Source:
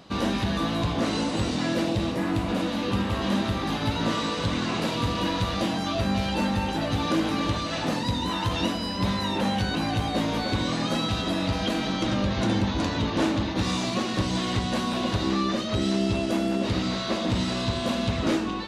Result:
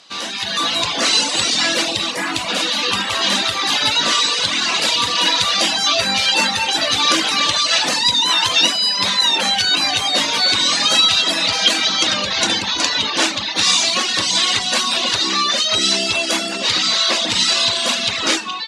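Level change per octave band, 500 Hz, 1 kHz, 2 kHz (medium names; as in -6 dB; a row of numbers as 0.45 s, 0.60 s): +2.5 dB, +8.0 dB, +13.5 dB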